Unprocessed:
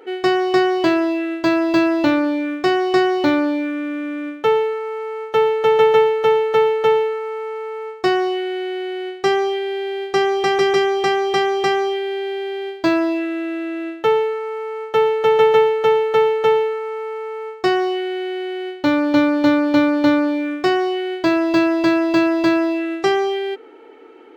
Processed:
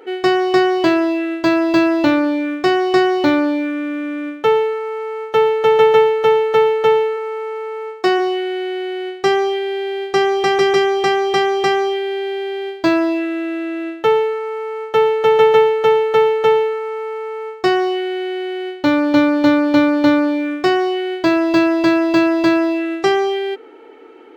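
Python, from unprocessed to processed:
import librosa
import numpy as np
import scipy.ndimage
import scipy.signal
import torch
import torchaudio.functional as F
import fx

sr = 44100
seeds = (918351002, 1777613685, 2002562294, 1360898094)

y = fx.highpass(x, sr, hz=180.0, slope=24, at=(7.16, 8.18), fade=0.02)
y = y * librosa.db_to_amplitude(2.0)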